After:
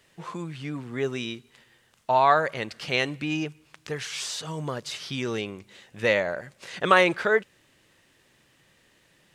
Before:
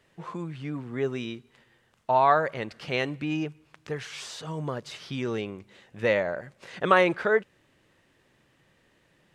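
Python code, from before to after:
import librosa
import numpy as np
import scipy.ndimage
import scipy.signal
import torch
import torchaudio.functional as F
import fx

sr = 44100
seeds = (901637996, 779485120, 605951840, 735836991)

y = fx.high_shelf(x, sr, hz=2600.0, db=10.0)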